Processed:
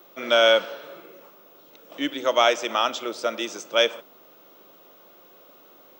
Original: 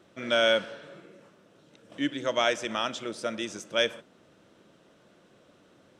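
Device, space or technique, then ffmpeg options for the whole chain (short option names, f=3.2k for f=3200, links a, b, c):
old television with a line whistle: -af "highpass=f=210:w=0.5412,highpass=f=210:w=1.3066,equalizer=f=210:t=q:w=4:g=-9,equalizer=f=300:t=q:w=4:g=-4,equalizer=f=810:t=q:w=4:g=4,equalizer=f=1.2k:t=q:w=4:g=4,equalizer=f=1.7k:t=q:w=4:g=-6,lowpass=f=7.3k:w=0.5412,lowpass=f=7.3k:w=1.3066,aeval=exprs='val(0)+0.00126*sin(2*PI*15625*n/s)':c=same,volume=6dB"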